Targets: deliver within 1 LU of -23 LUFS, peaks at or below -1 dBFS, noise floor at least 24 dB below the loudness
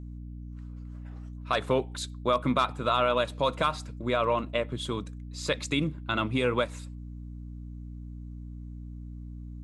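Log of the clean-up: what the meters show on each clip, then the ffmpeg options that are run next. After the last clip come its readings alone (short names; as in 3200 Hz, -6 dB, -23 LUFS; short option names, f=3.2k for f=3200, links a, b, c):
hum 60 Hz; harmonics up to 300 Hz; hum level -38 dBFS; loudness -28.5 LUFS; peak -12.5 dBFS; loudness target -23.0 LUFS
-> -af "bandreject=f=60:t=h:w=6,bandreject=f=120:t=h:w=6,bandreject=f=180:t=h:w=6,bandreject=f=240:t=h:w=6,bandreject=f=300:t=h:w=6"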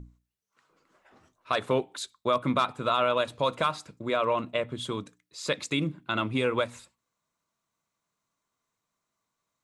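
hum none; loudness -29.0 LUFS; peak -12.5 dBFS; loudness target -23.0 LUFS
-> -af "volume=6dB"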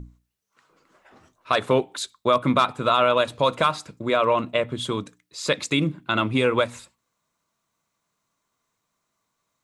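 loudness -23.0 LUFS; peak -6.5 dBFS; noise floor -78 dBFS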